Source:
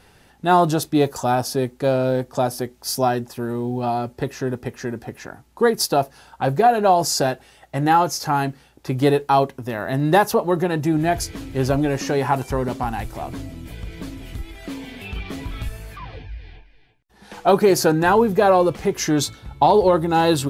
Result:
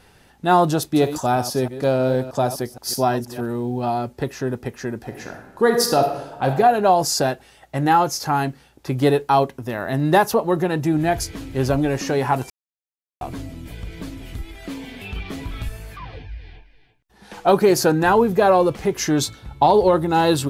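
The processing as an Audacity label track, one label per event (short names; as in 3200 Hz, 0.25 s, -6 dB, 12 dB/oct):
0.740000	3.460000	reverse delay 0.157 s, level -12 dB
5.010000	6.460000	reverb throw, RT60 1 s, DRR 3.5 dB
12.500000	13.210000	mute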